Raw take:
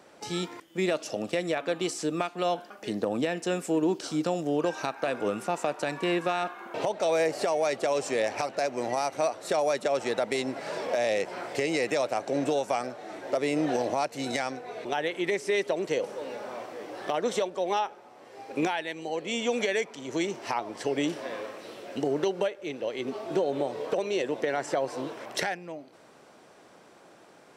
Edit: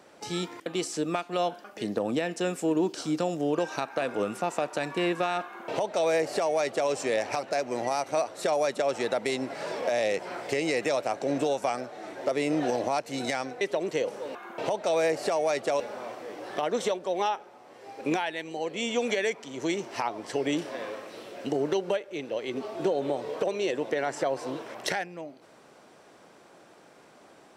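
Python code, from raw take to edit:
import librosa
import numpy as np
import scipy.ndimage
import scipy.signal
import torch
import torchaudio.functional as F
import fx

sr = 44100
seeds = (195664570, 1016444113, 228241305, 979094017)

y = fx.edit(x, sr, fx.cut(start_s=0.66, length_s=1.06),
    fx.duplicate(start_s=6.51, length_s=1.45, to_s=16.31),
    fx.cut(start_s=14.67, length_s=0.9), tone=tone)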